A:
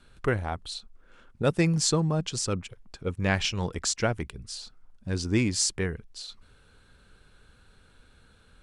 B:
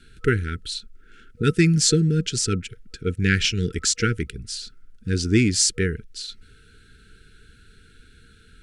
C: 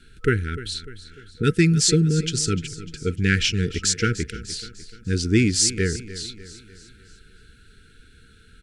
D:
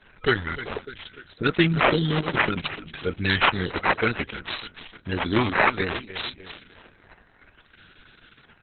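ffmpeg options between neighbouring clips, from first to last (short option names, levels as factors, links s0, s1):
-af "afftfilt=real='re*(1-between(b*sr/4096,480,1300))':imag='im*(1-between(b*sr/4096,480,1300))':win_size=4096:overlap=0.75,volume=2.11"
-af "aecho=1:1:299|598|897|1196|1495:0.168|0.0839|0.042|0.021|0.0105"
-filter_complex "[0:a]acrusher=samples=9:mix=1:aa=0.000001:lfo=1:lforange=9:lforate=0.59,asplit=2[s0][s1];[s1]highpass=f=720:p=1,volume=4.47,asoftclip=type=tanh:threshold=0.891[s2];[s0][s2]amix=inputs=2:normalize=0,lowpass=f=7400:p=1,volume=0.501,volume=0.794" -ar 48000 -c:a libopus -b:a 6k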